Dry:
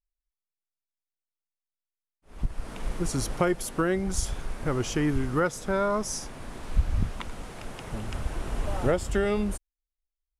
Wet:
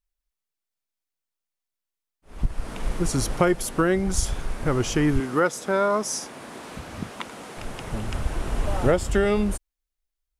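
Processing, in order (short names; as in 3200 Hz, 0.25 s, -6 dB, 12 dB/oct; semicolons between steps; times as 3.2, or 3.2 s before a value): 5.2–7.57 HPF 220 Hz 12 dB/oct; gain +4.5 dB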